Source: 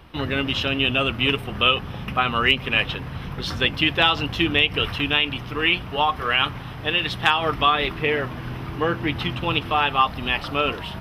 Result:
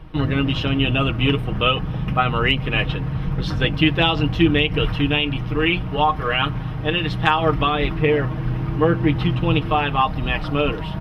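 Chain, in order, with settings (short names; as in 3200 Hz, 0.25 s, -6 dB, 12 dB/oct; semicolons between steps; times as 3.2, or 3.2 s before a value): tilt -2.5 dB/oct; comb 6.4 ms, depth 53%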